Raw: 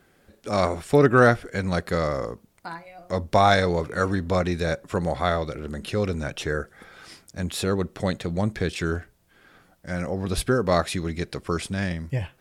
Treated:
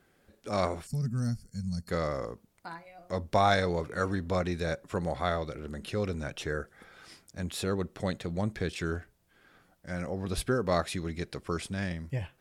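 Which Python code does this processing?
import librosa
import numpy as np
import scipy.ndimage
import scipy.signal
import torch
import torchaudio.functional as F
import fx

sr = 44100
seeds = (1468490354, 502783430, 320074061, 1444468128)

y = fx.spec_box(x, sr, start_s=0.86, length_s=1.03, low_hz=240.0, high_hz=4200.0, gain_db=-25)
y = F.gain(torch.from_numpy(y), -6.5).numpy()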